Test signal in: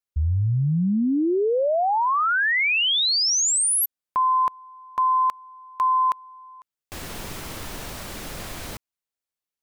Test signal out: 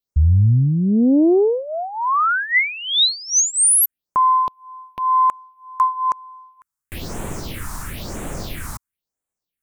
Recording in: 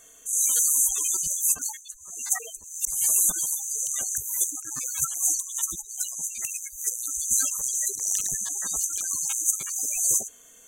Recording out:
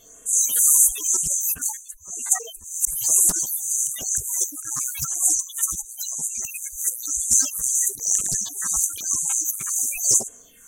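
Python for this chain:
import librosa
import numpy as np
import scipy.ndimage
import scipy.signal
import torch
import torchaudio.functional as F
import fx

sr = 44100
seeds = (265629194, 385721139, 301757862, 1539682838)

y = fx.phaser_stages(x, sr, stages=4, low_hz=460.0, high_hz=4600.0, hz=1.0, feedback_pct=40)
y = fx.doppler_dist(y, sr, depth_ms=0.39)
y = y * 10.0 ** (6.0 / 20.0)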